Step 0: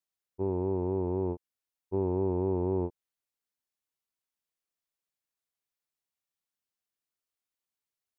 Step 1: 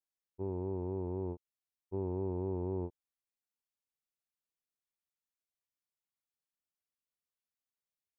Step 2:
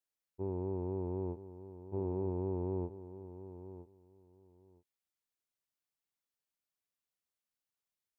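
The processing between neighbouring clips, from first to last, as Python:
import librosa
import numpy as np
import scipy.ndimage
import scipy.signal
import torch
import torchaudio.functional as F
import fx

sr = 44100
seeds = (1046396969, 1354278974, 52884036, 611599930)

y1 = fx.low_shelf(x, sr, hz=170.0, db=4.5)
y1 = F.gain(torch.from_numpy(y1), -8.5).numpy()
y2 = fx.echo_feedback(y1, sr, ms=965, feedback_pct=17, wet_db=-13)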